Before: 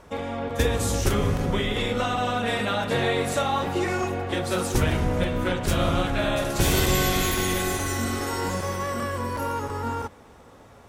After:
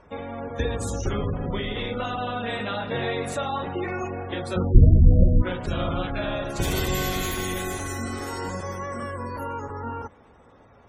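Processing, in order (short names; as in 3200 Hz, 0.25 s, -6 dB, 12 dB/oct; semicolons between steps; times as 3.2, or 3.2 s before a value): 4.56–5.42 RIAA curve playback; spectral gate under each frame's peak -25 dB strong; gain -3.5 dB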